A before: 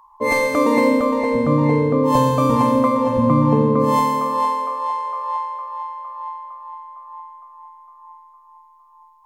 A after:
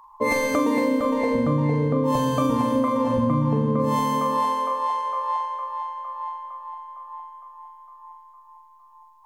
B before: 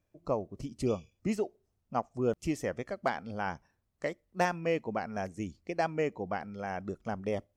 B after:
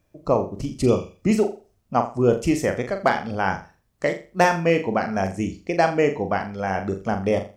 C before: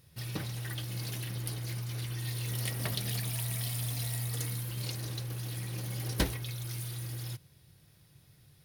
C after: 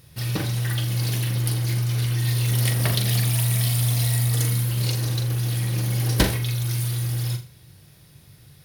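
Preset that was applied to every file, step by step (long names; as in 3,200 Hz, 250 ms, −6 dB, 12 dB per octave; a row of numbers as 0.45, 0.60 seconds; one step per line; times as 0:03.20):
flutter between parallel walls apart 7.1 metres, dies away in 0.33 s
downward compressor 5 to 1, threshold −19 dBFS
loudness normalisation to −23 LKFS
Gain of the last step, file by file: +0.5, +11.0, +10.0 decibels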